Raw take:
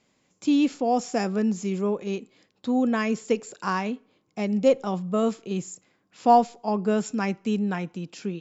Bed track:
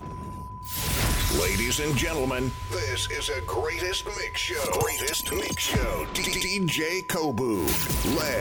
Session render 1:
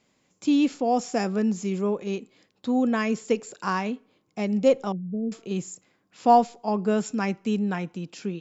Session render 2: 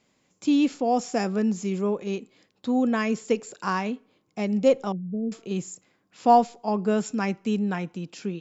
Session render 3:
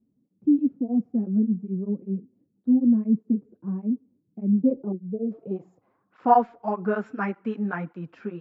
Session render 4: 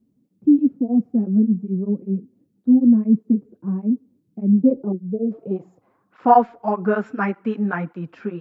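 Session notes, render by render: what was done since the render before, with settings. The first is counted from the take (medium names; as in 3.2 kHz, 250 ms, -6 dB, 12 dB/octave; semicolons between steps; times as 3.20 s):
4.92–5.32 s: Gaussian low-pass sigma 24 samples
no audible change
low-pass sweep 240 Hz -> 1.5 kHz, 4.52–6.31 s; cancelling through-zero flanger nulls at 1.7 Hz, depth 7.2 ms
trim +5.5 dB; peak limiter -3 dBFS, peak gain reduction 2 dB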